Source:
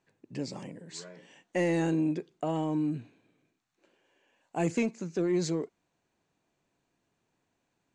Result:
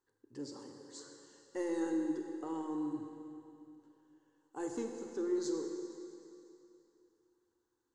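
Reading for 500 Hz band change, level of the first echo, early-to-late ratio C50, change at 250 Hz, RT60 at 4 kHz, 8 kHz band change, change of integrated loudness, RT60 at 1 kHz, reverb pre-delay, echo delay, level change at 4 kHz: -6.5 dB, none, 4.0 dB, -6.5 dB, 2.7 s, -6.0 dB, -8.5 dB, 2.8 s, 28 ms, none, -9.0 dB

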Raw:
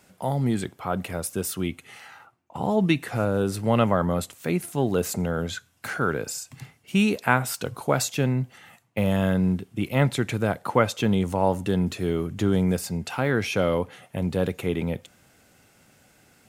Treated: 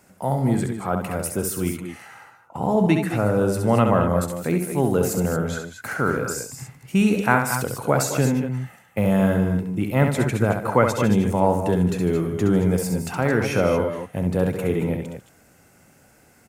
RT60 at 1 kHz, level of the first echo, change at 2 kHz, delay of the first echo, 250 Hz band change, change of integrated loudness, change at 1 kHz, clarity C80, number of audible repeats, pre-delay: none, -6.0 dB, +2.5 dB, 67 ms, +4.0 dB, +3.5 dB, +3.5 dB, none, 3, none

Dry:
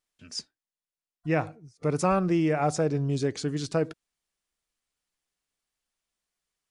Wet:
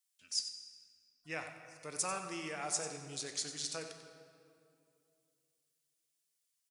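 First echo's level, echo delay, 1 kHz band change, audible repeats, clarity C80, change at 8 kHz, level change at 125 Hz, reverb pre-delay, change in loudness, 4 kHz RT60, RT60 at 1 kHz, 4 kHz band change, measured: -10.5 dB, 93 ms, -13.0 dB, 1, 6.5 dB, +3.0 dB, -24.5 dB, 14 ms, -11.5 dB, 1.6 s, 2.4 s, 0.0 dB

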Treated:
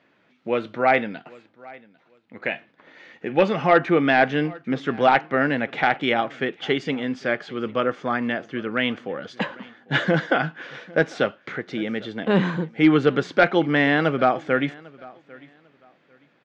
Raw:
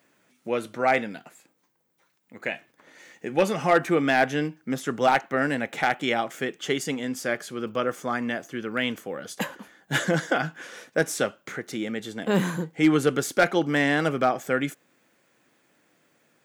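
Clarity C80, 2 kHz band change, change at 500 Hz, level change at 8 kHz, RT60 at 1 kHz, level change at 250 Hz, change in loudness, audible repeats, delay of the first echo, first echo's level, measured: none, +3.5 dB, +3.5 dB, under -15 dB, none, +3.5 dB, +3.5 dB, 1, 0.798 s, -23.0 dB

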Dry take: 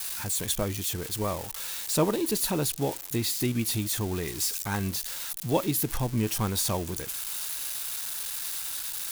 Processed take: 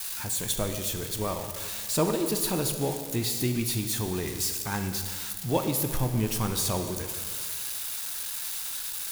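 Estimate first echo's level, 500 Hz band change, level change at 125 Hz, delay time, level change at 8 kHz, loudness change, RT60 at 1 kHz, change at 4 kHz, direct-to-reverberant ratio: none, 0.0 dB, +0.5 dB, none, 0.0 dB, 0.0 dB, 1.9 s, 0.0 dB, 6.0 dB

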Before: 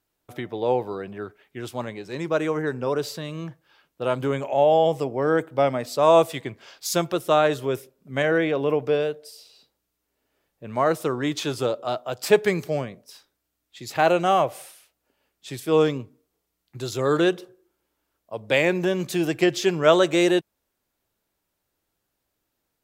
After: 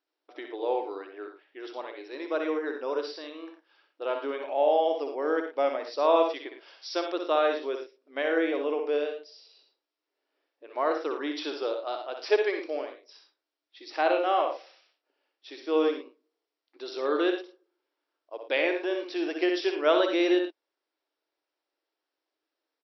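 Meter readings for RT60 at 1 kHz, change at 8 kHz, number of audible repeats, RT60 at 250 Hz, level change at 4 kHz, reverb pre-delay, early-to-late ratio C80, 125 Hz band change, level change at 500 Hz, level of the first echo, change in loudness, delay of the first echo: none, under -15 dB, 2, none, -5.0 dB, none, none, under -40 dB, -5.0 dB, -6.5 dB, -5.5 dB, 61 ms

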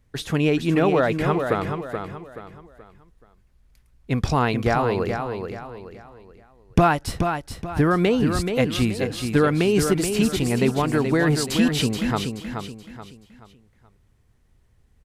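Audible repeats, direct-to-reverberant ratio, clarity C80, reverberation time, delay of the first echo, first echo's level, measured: 4, none, none, none, 0.428 s, -6.5 dB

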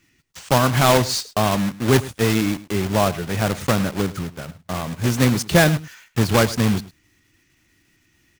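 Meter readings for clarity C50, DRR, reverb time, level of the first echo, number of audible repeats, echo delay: none, none, none, -18.0 dB, 1, 0.105 s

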